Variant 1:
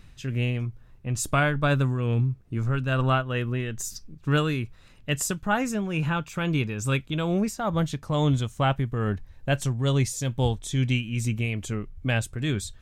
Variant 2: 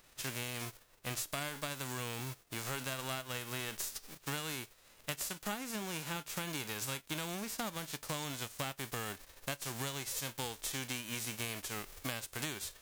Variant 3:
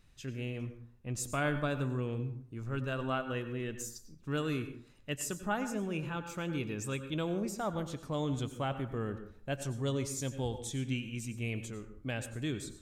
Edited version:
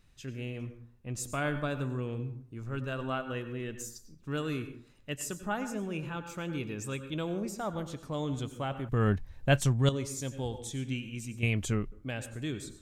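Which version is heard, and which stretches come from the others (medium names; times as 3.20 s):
3
8.89–9.89 s: from 1
11.43–11.92 s: from 1
not used: 2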